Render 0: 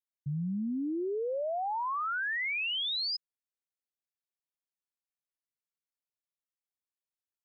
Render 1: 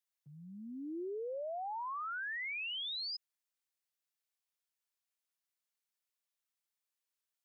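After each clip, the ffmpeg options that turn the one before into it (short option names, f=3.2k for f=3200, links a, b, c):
-af "highpass=440,tiltshelf=f=970:g=-3.5,alimiter=level_in=14dB:limit=-24dB:level=0:latency=1,volume=-14dB,volume=1dB"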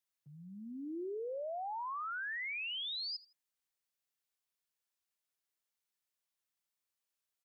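-af "aecho=1:1:81|162:0.1|0.029"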